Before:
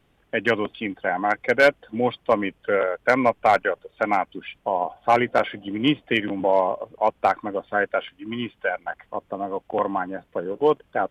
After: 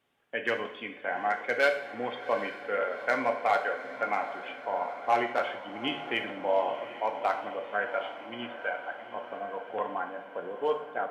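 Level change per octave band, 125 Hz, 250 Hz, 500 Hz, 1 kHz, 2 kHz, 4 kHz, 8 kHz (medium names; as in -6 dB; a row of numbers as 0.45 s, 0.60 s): -16.5 dB, -13.5 dB, -8.5 dB, -7.0 dB, -6.5 dB, -6.5 dB, no reading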